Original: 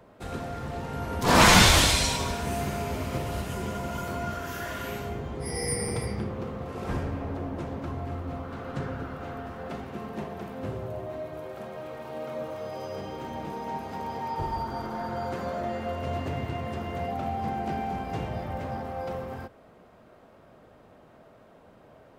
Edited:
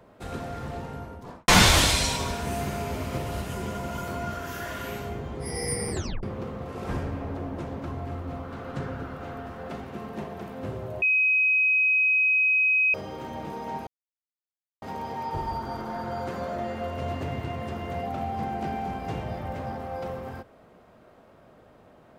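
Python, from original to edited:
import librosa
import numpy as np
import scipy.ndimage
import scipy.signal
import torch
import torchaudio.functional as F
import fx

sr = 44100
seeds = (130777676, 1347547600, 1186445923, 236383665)

y = fx.studio_fade_out(x, sr, start_s=0.64, length_s=0.84)
y = fx.edit(y, sr, fx.tape_stop(start_s=5.91, length_s=0.32),
    fx.bleep(start_s=11.02, length_s=1.92, hz=2530.0, db=-18.5),
    fx.insert_silence(at_s=13.87, length_s=0.95), tone=tone)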